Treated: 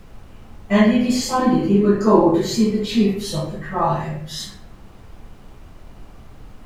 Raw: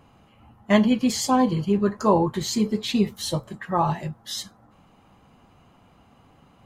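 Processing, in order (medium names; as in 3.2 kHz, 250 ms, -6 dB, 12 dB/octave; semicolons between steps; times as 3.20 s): 1.38–2.38 s: peaking EQ 310 Hz +13.5 dB 0.35 oct; reverberation RT60 0.60 s, pre-delay 4 ms, DRR -12 dB; added noise brown -25 dBFS; trim -14 dB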